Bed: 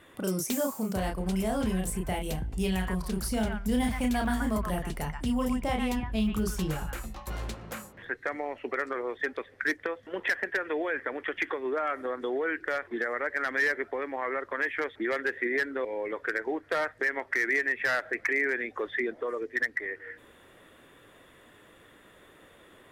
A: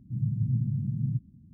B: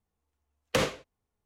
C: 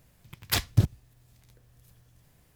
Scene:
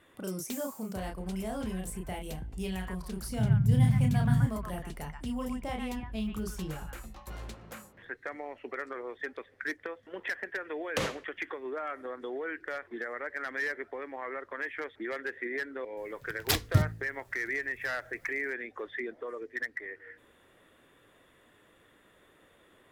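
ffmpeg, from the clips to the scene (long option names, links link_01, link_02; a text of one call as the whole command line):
ffmpeg -i bed.wav -i cue0.wav -i cue1.wav -i cue2.wav -filter_complex "[0:a]volume=-6.5dB[link_01];[1:a]lowshelf=frequency=150:gain=8.5[link_02];[3:a]bandreject=frequency=55.03:width_type=h:width=4,bandreject=frequency=110.06:width_type=h:width=4,bandreject=frequency=165.09:width_type=h:width=4,bandreject=frequency=220.12:width_type=h:width=4,bandreject=frequency=275.15:width_type=h:width=4,bandreject=frequency=330.18:width_type=h:width=4,bandreject=frequency=385.21:width_type=h:width=4,bandreject=frequency=440.24:width_type=h:width=4,bandreject=frequency=495.27:width_type=h:width=4[link_03];[link_02]atrim=end=1.53,asetpts=PTS-STARTPTS,volume=-1dB,afade=type=in:duration=0.004:curve=hsin,afade=type=out:start_time=1.526:duration=0.004:curve=hsin,adelay=3280[link_04];[2:a]atrim=end=1.45,asetpts=PTS-STARTPTS,volume=-5dB,afade=type=in:duration=0.004:curve=hsin,afade=type=out:start_time=1.446:duration=0.004:curve=hsin,adelay=10220[link_05];[link_03]atrim=end=2.55,asetpts=PTS-STARTPTS,volume=-1.5dB,afade=type=in:duration=0.004:curve=hsin,afade=type=out:start_time=2.546:duration=0.004:curve=hsin,adelay=15970[link_06];[link_01][link_04][link_05][link_06]amix=inputs=4:normalize=0" out.wav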